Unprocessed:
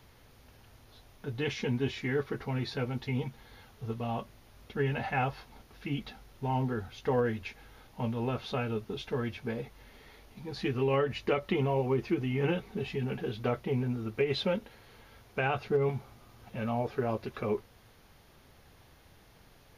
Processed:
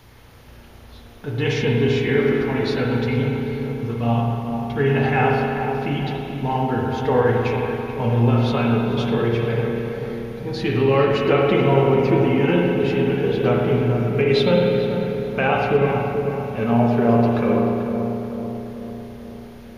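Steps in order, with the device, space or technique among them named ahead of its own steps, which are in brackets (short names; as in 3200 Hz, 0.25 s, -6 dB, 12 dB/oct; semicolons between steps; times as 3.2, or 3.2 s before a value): dub delay into a spring reverb (darkening echo 0.438 s, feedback 61%, low-pass 1200 Hz, level -6 dB; spring tank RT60 2.1 s, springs 34/51 ms, chirp 75 ms, DRR -1 dB); gain +8.5 dB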